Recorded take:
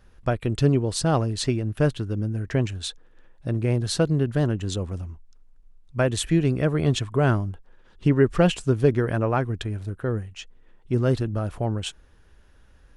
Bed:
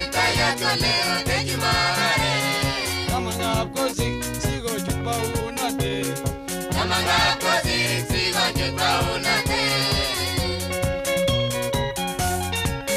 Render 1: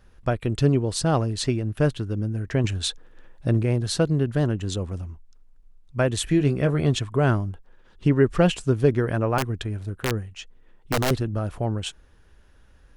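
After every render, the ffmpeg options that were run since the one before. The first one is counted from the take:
-filter_complex "[0:a]asettb=1/sr,asplit=3[s0][s1][s2];[s0]atrim=end=2.644[s3];[s1]atrim=start=2.64:end=3.63,asetpts=PTS-STARTPTS,afade=t=in:d=0.004:c=qsin,afade=t=out:st=0.986:d=0.004:c=qsin,acontrast=23[s4];[s2]atrim=start=3.626[s5];[s3][s4]acrossfade=d=0.004:c1=hsin:c2=qsin[s6];[s6][s5]acrossfade=d=0.004:c1=qsin:c2=hsin,asettb=1/sr,asplit=3[s7][s8][s9];[s7]atrim=end=6.254[s10];[s8]atrim=start=6.25:end=6.87,asetpts=PTS-STARTPTS,afade=t=in:d=0.004:c=qsin,afade=t=out:st=0.616:d=0.004:c=qsin,asplit=2[s11][s12];[s12]adelay=21,volume=0.355[s13];[s11][s13]amix=inputs=2:normalize=0,atrim=end_sample=27342[s14];[s9]atrim=start=6.866[s15];[s10][s14]acrossfade=d=0.004:c1=hsin:c2=qsin[s16];[s16][s15]acrossfade=d=0.004:c1=qsin:c2=hsin,asettb=1/sr,asplit=3[s17][s18][s19];[s17]atrim=end=9.384[s20];[s18]atrim=start=9.38:end=11.11,asetpts=PTS-STARTPTS,afade=t=in:d=0.004:c=qsin,afade=t=out:st=1.726:d=0.004:c=qsin,aeval=exprs='(mod(6.31*val(0)+1,2)-1)/6.31':c=same[s21];[s19]atrim=start=11.106[s22];[s20][s21]acrossfade=d=0.004:c1=hsin:c2=qsin[s23];[s23][s22]acrossfade=d=0.004:c1=qsin:c2=hsin"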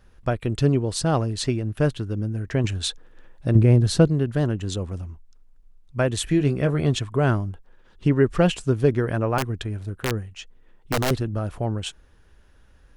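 -filter_complex "[0:a]asettb=1/sr,asplit=3[s0][s1][s2];[s0]atrim=end=3.554[s3];[s1]atrim=start=3.55:end=4.08,asetpts=PTS-STARTPTS,afade=t=in:d=0.004:c=qsin,afade=t=out:st=0.526:d=0.004:c=qsin,lowshelf=f=430:g=8.5[s4];[s2]atrim=start=4.076[s5];[s3][s4]acrossfade=d=0.004:c1=hsin:c2=qsin[s6];[s6][s5]acrossfade=d=0.004:c1=qsin:c2=hsin"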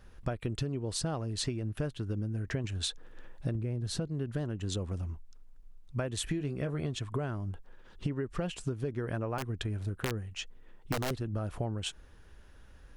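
-af "alimiter=limit=0.251:level=0:latency=1:release=288,acompressor=threshold=0.0316:ratio=12"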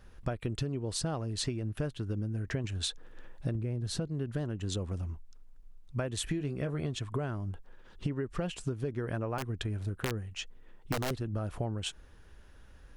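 -af anull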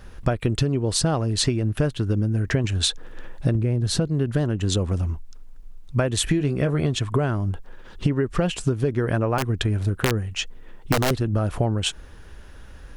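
-af "volume=3.98"

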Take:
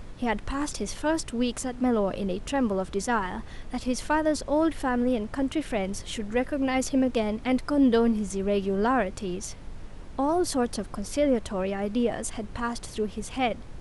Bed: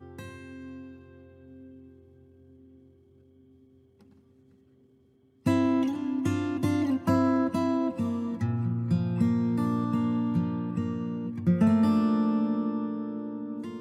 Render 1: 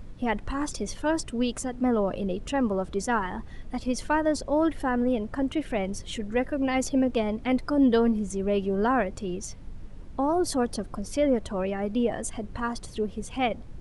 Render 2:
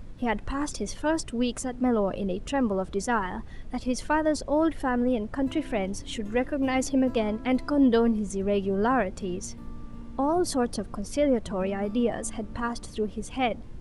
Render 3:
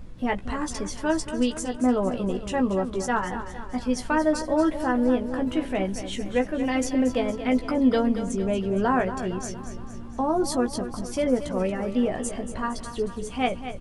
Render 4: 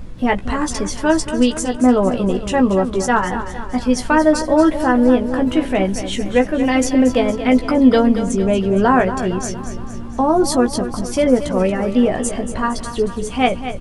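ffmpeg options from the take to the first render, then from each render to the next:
-af "afftdn=nr=8:nf=-42"
-filter_complex "[1:a]volume=0.112[s0];[0:a][s0]amix=inputs=2:normalize=0"
-filter_complex "[0:a]asplit=2[s0][s1];[s1]adelay=16,volume=0.501[s2];[s0][s2]amix=inputs=2:normalize=0,aecho=1:1:231|462|693|924|1155|1386:0.282|0.152|0.0822|0.0444|0.024|0.0129"
-af "volume=2.82"

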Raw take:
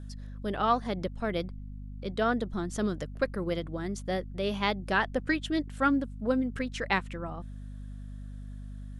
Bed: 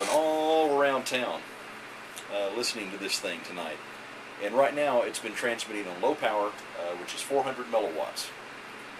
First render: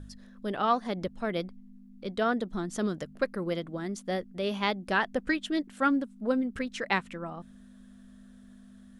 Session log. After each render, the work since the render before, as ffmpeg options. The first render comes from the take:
-af "bandreject=f=50:t=h:w=4,bandreject=f=100:t=h:w=4,bandreject=f=150:t=h:w=4"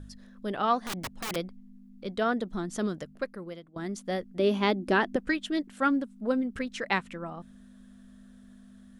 -filter_complex "[0:a]asettb=1/sr,asplit=3[s0][s1][s2];[s0]atrim=end=0.864[s3];[s1]atrim=start=0.86:end=1.36,asetpts=PTS-STARTPTS,afade=t=in:d=0.004:c=qsin,afade=t=out:st=0.496:d=0.004:c=qsin,aeval=exprs='(mod(26.6*val(0)+1,2)-1)/26.6':c=same[s4];[s2]atrim=start=1.356[s5];[s3][s4]acrossfade=d=0.004:c1=hsin:c2=qsin[s6];[s6][s5]acrossfade=d=0.004:c1=qsin:c2=hsin,asettb=1/sr,asplit=3[s7][s8][s9];[s7]atrim=end=4.394[s10];[s8]atrim=start=4.39:end=5.16,asetpts=PTS-STARTPTS,afade=t=in:d=0.004:c=qsin,afade=t=out:st=0.766:d=0.004:c=qsin,equalizer=f=310:w=1.5:g=13.5[s11];[s9]atrim=start=5.156[s12];[s10][s11]acrossfade=d=0.004:c1=hsin:c2=qsin[s13];[s13][s12]acrossfade=d=0.004:c1=qsin:c2=hsin,asplit=2[s14][s15];[s14]atrim=end=3.76,asetpts=PTS-STARTPTS,afade=t=out:st=2.82:d=0.94:silence=0.0944061[s16];[s15]atrim=start=3.76,asetpts=PTS-STARTPTS,afade=t=in:d=0.004:c=hsin:silence=0.0944061[s17];[s16][s17]concat=n=2:v=0:a=1"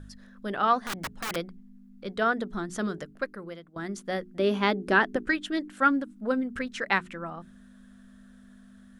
-af "equalizer=f=1500:w=1.7:g=6,bandreject=f=60:t=h:w=6,bandreject=f=120:t=h:w=6,bandreject=f=180:t=h:w=6,bandreject=f=240:t=h:w=6,bandreject=f=300:t=h:w=6,bandreject=f=360:t=h:w=6,bandreject=f=420:t=h:w=6"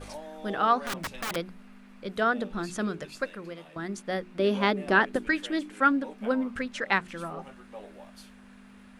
-filter_complex "[1:a]volume=0.141[s0];[0:a][s0]amix=inputs=2:normalize=0"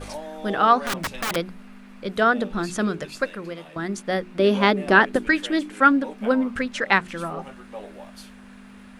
-af "volume=2.11"

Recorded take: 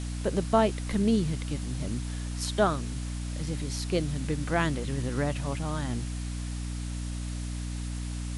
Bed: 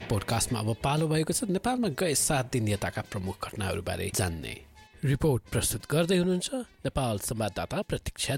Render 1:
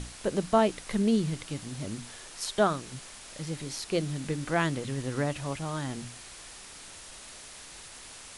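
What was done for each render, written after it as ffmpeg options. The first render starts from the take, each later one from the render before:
-af "bandreject=f=60:t=h:w=6,bandreject=f=120:t=h:w=6,bandreject=f=180:t=h:w=6,bandreject=f=240:t=h:w=6,bandreject=f=300:t=h:w=6"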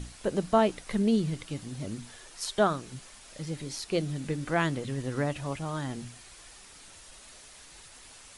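-af "afftdn=nr=6:nf=-47"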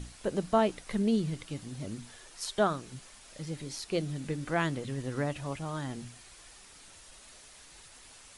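-af "volume=0.75"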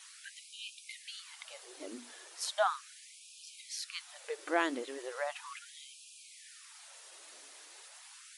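-af "afftfilt=real='re*gte(b*sr/1024,250*pow(2400/250,0.5+0.5*sin(2*PI*0.37*pts/sr)))':imag='im*gte(b*sr/1024,250*pow(2400/250,0.5+0.5*sin(2*PI*0.37*pts/sr)))':win_size=1024:overlap=0.75"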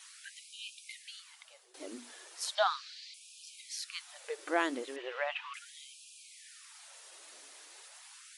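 -filter_complex "[0:a]asettb=1/sr,asplit=3[s0][s1][s2];[s0]atrim=end=2.554[s3];[s1]atrim=start=2.55:end=3.14,asetpts=PTS-STARTPTS,afade=t=in:d=0.004:c=qsin,afade=t=out:st=0.586:d=0.004:c=qsin,lowpass=f=4400:t=q:w=4.5[s4];[s2]atrim=start=3.136[s5];[s3][s4]acrossfade=d=0.004:c1=hsin:c2=qsin[s6];[s6][s5]acrossfade=d=0.004:c1=qsin:c2=hsin,asettb=1/sr,asplit=3[s7][s8][s9];[s7]atrim=end=4.964[s10];[s8]atrim=start=4.96:end=5.54,asetpts=PTS-STARTPTS,afade=t=in:d=0.004:c=qsin,afade=t=out:st=0.576:d=0.004:c=qsin,lowpass=f=2800:t=q:w=3.1[s11];[s9]atrim=start=5.536[s12];[s10][s11]acrossfade=d=0.004:c1=hsin:c2=qsin[s13];[s13][s12]acrossfade=d=0.004:c1=qsin:c2=hsin,asplit=2[s14][s15];[s14]atrim=end=1.74,asetpts=PTS-STARTPTS,afade=t=out:st=0.87:d=0.87:silence=0.16788[s16];[s15]atrim=start=1.74,asetpts=PTS-STARTPTS,afade=t=in:d=0.004:c=hsin:silence=0.16788[s17];[s16][s17]concat=n=2:v=0:a=1"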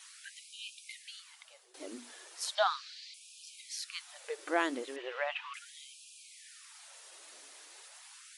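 -af anull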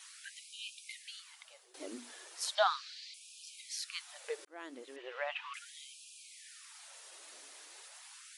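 -filter_complex "[0:a]asplit=2[s0][s1];[s0]atrim=end=4.45,asetpts=PTS-STARTPTS,afade=t=out:st=4.446:d=0.004:c=hsin[s2];[s1]atrim=start=4.45,asetpts=PTS-STARTPTS,afade=t=in:d=1.13[s3];[s2][s3]concat=n=2:v=0:a=1"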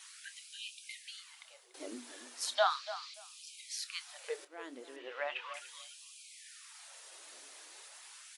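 -filter_complex "[0:a]asplit=2[s0][s1];[s1]adelay=28,volume=0.224[s2];[s0][s2]amix=inputs=2:normalize=0,asplit=2[s3][s4];[s4]adelay=289,lowpass=f=2400:p=1,volume=0.224,asplit=2[s5][s6];[s6]adelay=289,lowpass=f=2400:p=1,volume=0.18[s7];[s3][s5][s7]amix=inputs=3:normalize=0"

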